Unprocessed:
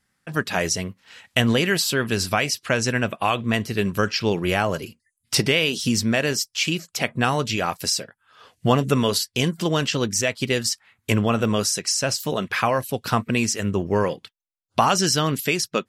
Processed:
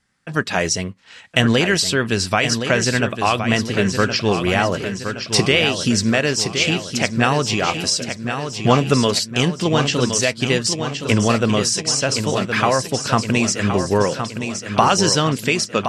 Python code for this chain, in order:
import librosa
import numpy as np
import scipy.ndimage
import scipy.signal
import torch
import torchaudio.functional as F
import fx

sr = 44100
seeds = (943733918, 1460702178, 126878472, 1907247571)

p1 = scipy.signal.sosfilt(scipy.signal.butter(4, 9200.0, 'lowpass', fs=sr, output='sos'), x)
p2 = p1 + fx.echo_feedback(p1, sr, ms=1068, feedback_pct=53, wet_db=-8, dry=0)
y = p2 * 10.0 ** (3.5 / 20.0)